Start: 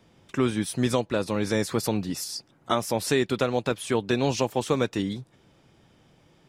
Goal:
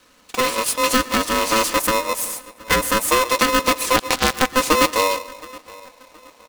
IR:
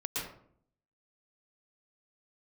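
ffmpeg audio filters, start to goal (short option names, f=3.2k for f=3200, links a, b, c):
-filter_complex "[0:a]aeval=exprs='if(lt(val(0),0),0.251*val(0),val(0))':c=same,highpass=51,asubboost=boost=6:cutoff=230,asettb=1/sr,asplit=3[a][b][c];[a]atrim=end=1.784[d];[b]atrim=start=1.78:end=3.29,asetpts=PTS-STARTPTS,afade=t=in:d=0.004:c=qsin,afade=t=out:st=1.506:d=0.004:c=qsin,asuperstop=centerf=4200:order=4:qfactor=0.77[e];[c]atrim=start=3.286[f];[d][e]acrossfade=d=0.004:c1=hsin:c2=qsin[g];[g][f]acrossfade=d=0.004:c1=qsin:c2=hsin,bass=f=250:g=-11,treble=f=4k:g=6,aecho=1:1:4:0.96,asettb=1/sr,asplit=3[h][i][j];[h]atrim=end=3.964[k];[i]atrim=start=3.96:end=4.55,asetpts=PTS-STARTPTS,afade=t=in:d=0.004:c=qsin,afade=t=out:st=0.586:d=0.004:c=qsin,acrusher=bits=2:mix=0:aa=0.5[l];[j]atrim=start=4.546[m];[k][l]acrossfade=d=0.004:c1=hsin:c2=qsin[n];[n][m]acrossfade=d=0.004:c1=qsin:c2=hsin,asplit=2[o][p];[p]adelay=721,lowpass=f=2.3k:p=1,volume=-22dB,asplit=2[q][r];[r]adelay=721,lowpass=f=2.3k:p=1,volume=0.36,asplit=2[s][t];[t]adelay=721,lowpass=f=2.3k:p=1,volume=0.36[u];[o][q][s][u]amix=inputs=4:normalize=0,asplit=2[v][w];[1:a]atrim=start_sample=2205[x];[w][x]afir=irnorm=-1:irlink=0,volume=-18.5dB[y];[v][y]amix=inputs=2:normalize=0,aeval=exprs='val(0)*sgn(sin(2*PI*770*n/s))':c=same,volume=7dB"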